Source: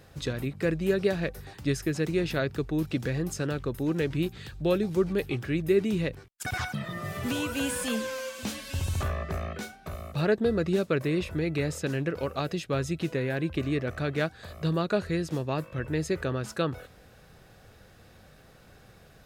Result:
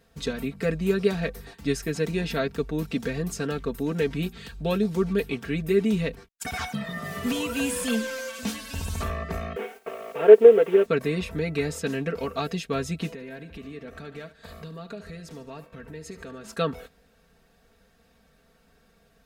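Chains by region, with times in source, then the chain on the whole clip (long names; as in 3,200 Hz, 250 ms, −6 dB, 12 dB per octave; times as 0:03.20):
0:09.56–0:10.86: variable-slope delta modulation 16 kbit/s + high-pass with resonance 430 Hz, resonance Q 3.7 + bit-depth reduction 10 bits, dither triangular
0:13.11–0:16.56: downward compressor 5 to 1, threshold −39 dBFS + repeating echo 73 ms, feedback 59%, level −14 dB
whole clip: noise gate −45 dBFS, range −9 dB; comb filter 4.4 ms, depth 84%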